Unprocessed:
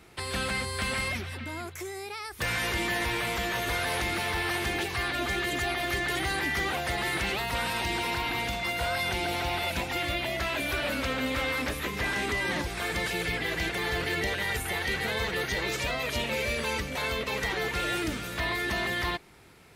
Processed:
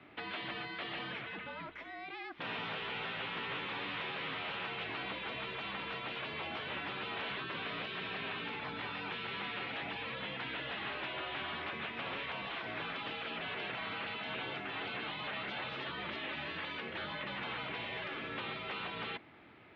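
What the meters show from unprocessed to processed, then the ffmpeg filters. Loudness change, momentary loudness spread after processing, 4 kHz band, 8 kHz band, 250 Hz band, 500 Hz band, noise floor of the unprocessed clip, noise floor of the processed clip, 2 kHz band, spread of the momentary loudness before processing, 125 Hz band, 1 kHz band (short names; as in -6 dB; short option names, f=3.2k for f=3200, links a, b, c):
-10.0 dB, 2 LU, -8.5 dB, under -40 dB, -11.5 dB, -12.0 dB, -40 dBFS, -47 dBFS, -10.0 dB, 3 LU, -14.5 dB, -8.5 dB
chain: -af "afftfilt=real='re*lt(hypot(re,im),0.0708)':imag='im*lt(hypot(re,im),0.0708)':win_size=1024:overlap=0.75,asoftclip=type=tanh:threshold=-29.5dB,highpass=f=180:t=q:w=0.5412,highpass=f=180:t=q:w=1.307,lowpass=f=3.4k:t=q:w=0.5176,lowpass=f=3.4k:t=q:w=0.7071,lowpass=f=3.4k:t=q:w=1.932,afreqshift=-63,volume=-1.5dB"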